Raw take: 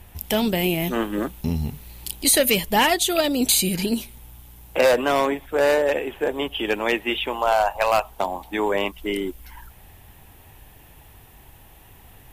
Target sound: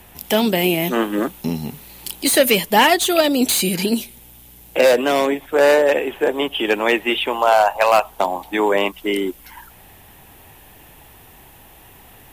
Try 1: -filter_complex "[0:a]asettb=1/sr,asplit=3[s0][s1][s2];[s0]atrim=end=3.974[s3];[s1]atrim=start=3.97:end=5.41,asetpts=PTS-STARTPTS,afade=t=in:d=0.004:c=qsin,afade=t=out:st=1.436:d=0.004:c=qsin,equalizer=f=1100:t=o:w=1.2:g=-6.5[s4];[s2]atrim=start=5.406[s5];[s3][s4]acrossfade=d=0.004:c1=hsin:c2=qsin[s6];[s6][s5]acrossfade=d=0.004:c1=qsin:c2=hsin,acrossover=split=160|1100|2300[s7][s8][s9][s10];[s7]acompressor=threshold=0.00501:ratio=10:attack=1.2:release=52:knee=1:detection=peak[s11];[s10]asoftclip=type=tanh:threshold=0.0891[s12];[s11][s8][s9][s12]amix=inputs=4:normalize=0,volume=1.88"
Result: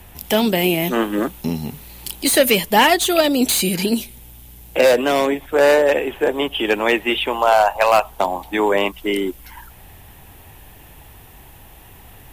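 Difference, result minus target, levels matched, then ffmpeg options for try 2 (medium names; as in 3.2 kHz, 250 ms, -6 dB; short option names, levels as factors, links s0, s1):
compression: peak gain reduction -8 dB
-filter_complex "[0:a]asettb=1/sr,asplit=3[s0][s1][s2];[s0]atrim=end=3.974[s3];[s1]atrim=start=3.97:end=5.41,asetpts=PTS-STARTPTS,afade=t=in:d=0.004:c=qsin,afade=t=out:st=1.436:d=0.004:c=qsin,equalizer=f=1100:t=o:w=1.2:g=-6.5[s4];[s2]atrim=start=5.406[s5];[s3][s4]acrossfade=d=0.004:c1=hsin:c2=qsin[s6];[s6][s5]acrossfade=d=0.004:c1=qsin:c2=hsin,acrossover=split=160|1100|2300[s7][s8][s9][s10];[s7]acompressor=threshold=0.00178:ratio=10:attack=1.2:release=52:knee=1:detection=peak[s11];[s10]asoftclip=type=tanh:threshold=0.0891[s12];[s11][s8][s9][s12]amix=inputs=4:normalize=0,volume=1.88"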